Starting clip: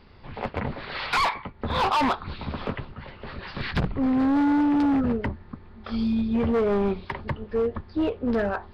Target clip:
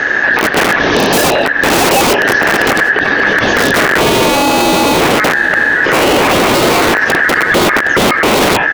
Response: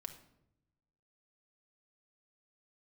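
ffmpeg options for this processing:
-filter_complex "[0:a]lowshelf=frequency=210:gain=8.5,aeval=exprs='(mod(12.6*val(0)+1,2)-1)/12.6':channel_layout=same,aeval=exprs='val(0)*sin(2*PI*1700*n/s)':channel_layout=same,acompressor=threshold=-34dB:ratio=4,equalizer=frequency=360:width=0.42:gain=14.5,asplit=2[link_01][link_02];[link_02]adelay=766,lowpass=frequency=3900:poles=1,volume=-20.5dB,asplit=2[link_03][link_04];[link_04]adelay=766,lowpass=frequency=3900:poles=1,volume=0.38,asplit=2[link_05][link_06];[link_06]adelay=766,lowpass=frequency=3900:poles=1,volume=0.38[link_07];[link_03][link_05][link_07]amix=inputs=3:normalize=0[link_08];[link_01][link_08]amix=inputs=2:normalize=0,acontrast=67,alimiter=level_in=25.5dB:limit=-1dB:release=50:level=0:latency=1,volume=-1dB"

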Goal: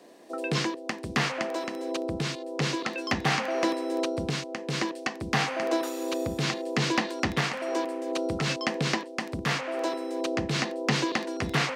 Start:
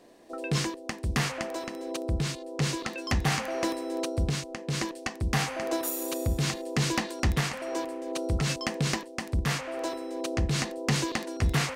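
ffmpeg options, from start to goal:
ffmpeg -i in.wav -filter_complex "[0:a]highpass=190,acrossover=split=370|1600|5700[link_01][link_02][link_03][link_04];[link_04]acompressor=threshold=-55dB:ratio=6[link_05];[link_01][link_02][link_03][link_05]amix=inputs=4:normalize=0,volume=3.5dB" out.wav

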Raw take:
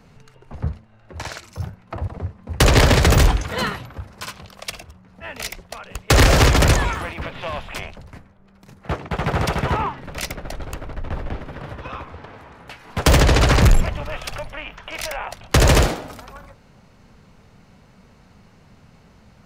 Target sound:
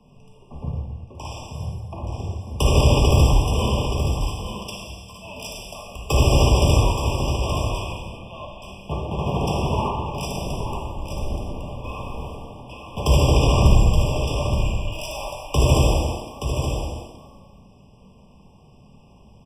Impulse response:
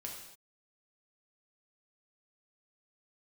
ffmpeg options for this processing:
-filter_complex "[0:a]asettb=1/sr,asplit=3[link_01][link_02][link_03];[link_01]atrim=end=11.844[link_04];[link_02]atrim=start=11.84:end=12.35,asetpts=PTS-STARTPTS,afade=type=in:duration=0.004:curve=qsin,afade=type=out:start_time=0.506:duration=0.004:curve=qsin,aeval=exprs='val(0)+0.5*0.0126*sgn(val(0))':channel_layout=same[link_05];[link_03]atrim=start=12.346[link_06];[link_04][link_05]acrossfade=duration=0.004:curve1=hsin:curve2=qsin[link_07];[link_07][link_06]acrossfade=duration=0.004:curve1=qsin:curve2=hsin,acrossover=split=130[link_08][link_09];[link_09]acompressor=threshold=-15dB:ratio=6[link_10];[link_08][link_10]amix=inputs=2:normalize=0,asettb=1/sr,asplit=3[link_11][link_12][link_13];[link_11]atrim=end=14.924[link_14];[link_12]atrim=start=14.92:end=15.71,asetpts=PTS-STARTPTS,afade=type=in:duration=0.004:curve=qsin,afade=type=out:start_time=0.786:duration=0.004:curve=qsin,aeval=exprs='val(0)*gte(abs(val(0)),0.0251)':channel_layout=same[link_15];[link_13]atrim=start=15.706[link_16];[link_14][link_15]acrossfade=duration=0.004:curve1=hsin:curve2=qsin[link_17];[link_17][link_16]acrossfade=duration=0.004:curve1=qsin:curve2=hsin,aecho=1:1:874:0.422[link_18];[1:a]atrim=start_sample=2205,afade=type=out:start_time=0.29:duration=0.01,atrim=end_sample=13230,asetrate=26460,aresample=44100[link_19];[link_18][link_19]afir=irnorm=-1:irlink=0,afftfilt=real='re*eq(mod(floor(b*sr/1024/1200),2),0)':imag='im*eq(mod(floor(b*sr/1024/1200),2),0)':win_size=1024:overlap=0.75,volume=-2dB"

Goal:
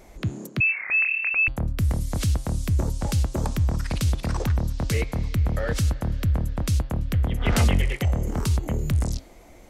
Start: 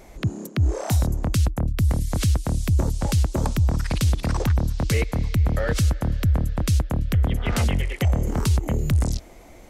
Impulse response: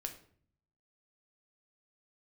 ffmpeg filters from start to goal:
-filter_complex "[0:a]bandreject=frequency=134:width_type=h:width=4,bandreject=frequency=268:width_type=h:width=4,bandreject=frequency=402:width_type=h:width=4,bandreject=frequency=536:width_type=h:width=4,bandreject=frequency=670:width_type=h:width=4,bandreject=frequency=804:width_type=h:width=4,bandreject=frequency=938:width_type=h:width=4,bandreject=frequency=1072:width_type=h:width=4,bandreject=frequency=1206:width_type=h:width=4,bandreject=frequency=1340:width_type=h:width=4,bandreject=frequency=1474:width_type=h:width=4,bandreject=frequency=1608:width_type=h:width=4,bandreject=frequency=1742:width_type=h:width=4,bandreject=frequency=1876:width_type=h:width=4,bandreject=frequency=2010:width_type=h:width=4,bandreject=frequency=2144:width_type=h:width=4,bandreject=frequency=2278:width_type=h:width=4,bandreject=frequency=2412:width_type=h:width=4,bandreject=frequency=2546:width_type=h:width=4,bandreject=frequency=2680:width_type=h:width=4,bandreject=frequency=2814:width_type=h:width=4,bandreject=frequency=2948:width_type=h:width=4,bandreject=frequency=3082:width_type=h:width=4,bandreject=frequency=3216:width_type=h:width=4,bandreject=frequency=3350:width_type=h:width=4,bandreject=frequency=3484:width_type=h:width=4,bandreject=frequency=3618:width_type=h:width=4,bandreject=frequency=3752:width_type=h:width=4,bandreject=frequency=3886:width_type=h:width=4,bandreject=frequency=4020:width_type=h:width=4,bandreject=frequency=4154:width_type=h:width=4,bandreject=frequency=4288:width_type=h:width=4,bandreject=frequency=4422:width_type=h:width=4,bandreject=frequency=4556:width_type=h:width=4,bandreject=frequency=4690:width_type=h:width=4,asettb=1/sr,asplit=3[link_01][link_02][link_03];[link_01]atrim=end=0.604[link_04];[link_02]atrim=start=0.6:end=1.48,asetpts=PTS-STARTPTS,afade=type=in:duration=0.004:curve=qsin,afade=type=out:start_time=0.876:duration=0.004:curve=qsin,lowpass=frequency=2300:width_type=q:width=0.5098,lowpass=frequency=2300:width_type=q:width=0.6013,lowpass=frequency=2300:width_type=q:width=0.9,lowpass=frequency=2300:width_type=q:width=2.563,afreqshift=-2700[link_05];[link_03]atrim=start=1.476[link_06];[link_04][link_05]acrossfade=duration=0.004:curve1=hsin:curve2=qsin[link_07];[link_07][link_06]acrossfade=duration=0.004:curve1=qsin:curve2=hsin,asplit=3[link_08][link_09][link_10];[link_08]afade=type=out:start_time=7.4:duration=0.02[link_11];[link_09]acontrast=26,afade=type=in:start_time=7.4:duration=0.02,afade=type=out:start_time=7.96:duration=0.02[link_12];[link_10]afade=type=in:start_time=7.96:duration=0.02[link_13];[link_11][link_12][link_13]amix=inputs=3:normalize=0,volume=-2.5dB"

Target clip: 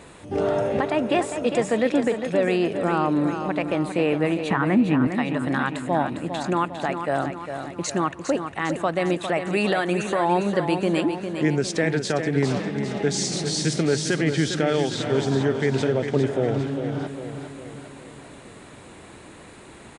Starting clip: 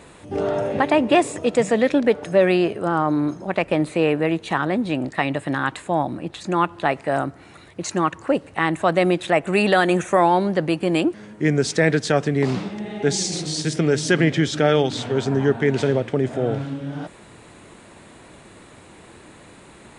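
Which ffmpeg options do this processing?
ffmpeg -i in.wav -filter_complex "[0:a]asettb=1/sr,asplit=3[link_01][link_02][link_03];[link_01]atrim=end=4.504[link_04];[link_02]atrim=start=4.5:end=5.07,asetpts=PTS-STARTPTS,afade=type=in:duration=0.004:curve=qsin,afade=type=out:start_time=0.566:duration=0.004:curve=qsin,equalizer=frequency=125:width_type=o:width=1:gain=9,equalizer=frequency=250:width_type=o:width=1:gain=10,equalizer=frequency=500:width_type=o:width=1:gain=-4,equalizer=frequency=1000:width_type=o:width=1:gain=6,equalizer=frequency=2000:width_type=o:width=1:gain=7,equalizer=frequency=4000:width_type=o:width=1:gain=-6,equalizer=frequency=8000:width_type=o:width=1:gain=-10[link_05];[link_03]atrim=start=5.066[link_06];[link_04][link_05]acrossfade=duration=0.004:curve1=hsin:curve2=qsin[link_07];[link_07][link_06]acrossfade=duration=0.004:curve1=qsin:curve2=hsin,alimiter=limit=-11.5dB:level=0:latency=1:release=406,aecho=1:1:404|808|1212|1616|2020|2424:0.398|0.211|0.112|0.0593|0.0314|0.0166" out.wav

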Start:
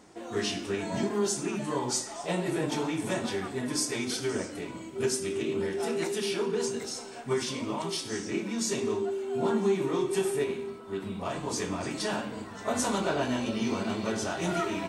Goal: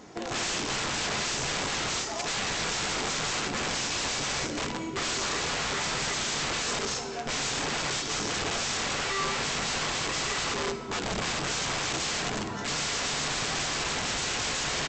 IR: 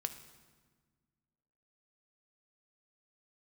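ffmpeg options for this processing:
-filter_complex "[0:a]aresample=16000,aeval=exprs='(mod(42.2*val(0)+1,2)-1)/42.2':channel_layout=same,aresample=44100[link_01];[1:a]atrim=start_sample=2205[link_02];[link_01][link_02]afir=irnorm=-1:irlink=0,volume=7.5dB"

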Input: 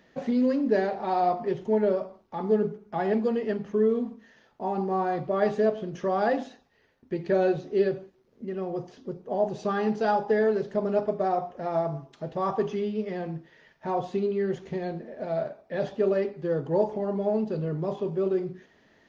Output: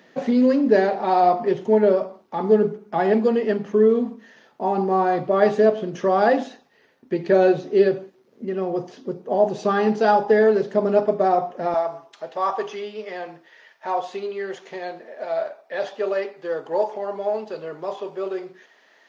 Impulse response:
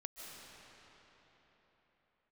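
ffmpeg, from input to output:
-af "asetnsamples=nb_out_samples=441:pad=0,asendcmd='11.74 highpass f 650',highpass=190,volume=7.5dB"

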